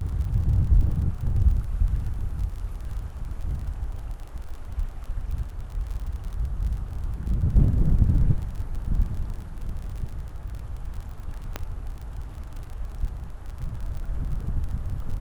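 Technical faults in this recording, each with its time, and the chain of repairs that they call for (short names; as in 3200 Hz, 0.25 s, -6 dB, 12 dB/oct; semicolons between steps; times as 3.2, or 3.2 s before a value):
crackle 35/s -33 dBFS
11.56 pop -13 dBFS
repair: de-click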